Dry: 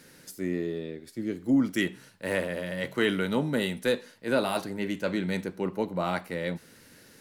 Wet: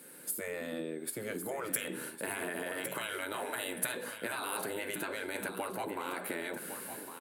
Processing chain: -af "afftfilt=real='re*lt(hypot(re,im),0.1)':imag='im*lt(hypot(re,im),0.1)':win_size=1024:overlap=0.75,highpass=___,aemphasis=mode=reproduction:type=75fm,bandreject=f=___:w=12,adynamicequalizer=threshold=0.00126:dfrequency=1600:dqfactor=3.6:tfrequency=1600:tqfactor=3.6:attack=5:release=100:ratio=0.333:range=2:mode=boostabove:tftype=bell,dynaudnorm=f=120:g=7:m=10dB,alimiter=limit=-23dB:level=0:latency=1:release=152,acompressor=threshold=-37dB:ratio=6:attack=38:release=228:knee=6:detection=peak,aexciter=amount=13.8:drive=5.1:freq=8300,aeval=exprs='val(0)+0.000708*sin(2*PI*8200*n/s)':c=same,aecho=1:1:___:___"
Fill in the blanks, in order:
260, 1900, 1108, 0.335